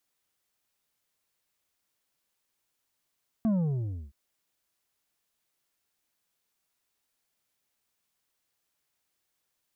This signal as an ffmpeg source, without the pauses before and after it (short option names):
-f lavfi -i "aevalsrc='0.0708*clip((0.67-t)/0.65,0,1)*tanh(2.11*sin(2*PI*230*0.67/log(65/230)*(exp(log(65/230)*t/0.67)-1)))/tanh(2.11)':d=0.67:s=44100"